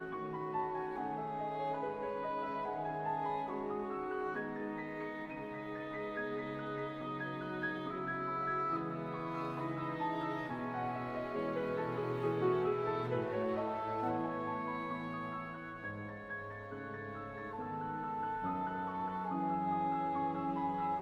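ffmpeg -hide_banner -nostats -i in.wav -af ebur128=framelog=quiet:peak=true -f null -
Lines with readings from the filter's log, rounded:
Integrated loudness:
  I:         -38.5 LUFS
  Threshold: -48.5 LUFS
Loudness range:
  LRA:         5.0 LU
  Threshold: -58.6 LUFS
  LRA low:   -41.2 LUFS
  LRA high:  -36.2 LUFS
True peak:
  Peak:      -22.2 dBFS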